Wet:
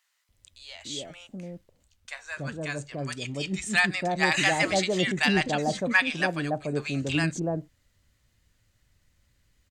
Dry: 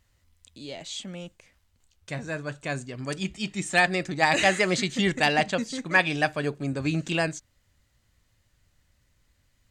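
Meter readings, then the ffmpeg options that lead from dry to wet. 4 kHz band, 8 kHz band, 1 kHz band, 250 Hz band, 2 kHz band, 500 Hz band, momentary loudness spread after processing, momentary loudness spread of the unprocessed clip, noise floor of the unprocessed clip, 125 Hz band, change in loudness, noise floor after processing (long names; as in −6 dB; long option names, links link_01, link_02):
0.0 dB, 0.0 dB, −3.0 dB, 0.0 dB, −0.5 dB, −1.5 dB, 18 LU, 17 LU, −69 dBFS, 0.0 dB, −0.5 dB, −70 dBFS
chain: -filter_complex "[0:a]acrossover=split=830[link_01][link_02];[link_01]adelay=290[link_03];[link_03][link_02]amix=inputs=2:normalize=0"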